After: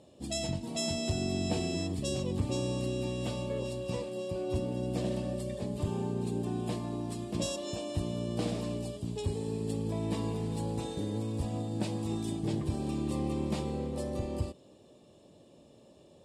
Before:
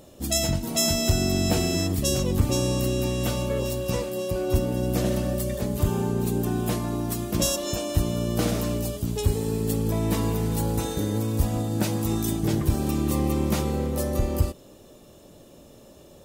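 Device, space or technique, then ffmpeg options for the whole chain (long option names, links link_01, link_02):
car door speaker: -af "highpass=86,equalizer=frequency=1400:width_type=q:width=4:gain=-10,equalizer=frequency=2000:width_type=q:width=4:gain=-4,equalizer=frequency=6200:width_type=q:width=4:gain=-10,lowpass=frequency=8400:width=0.5412,lowpass=frequency=8400:width=1.3066,volume=-7.5dB"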